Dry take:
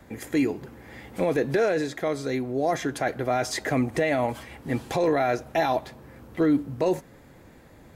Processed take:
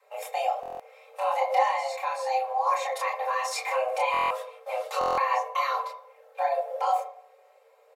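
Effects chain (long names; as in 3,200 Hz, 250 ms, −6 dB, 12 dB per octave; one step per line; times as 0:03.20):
in parallel at +1.5 dB: downward compressor, threshold −33 dBFS, peak gain reduction 14 dB
on the sum: noise gate −32 dBFS, range −12 dB
frequency shifter +390 Hz
multi-voice chorus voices 6, 0.78 Hz, delay 29 ms, depth 4.9 ms
comb filter 3.8 ms, depth 97%
hum removal 49.86 Hz, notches 14
on a send at −6.5 dB: parametric band 510 Hz +7 dB 0.49 octaves + convolution reverb RT60 0.60 s, pre-delay 3 ms
on the sum: buffer that repeats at 0:00.61/0:04.12/0:04.99, samples 1,024, times 7
level −5.5 dB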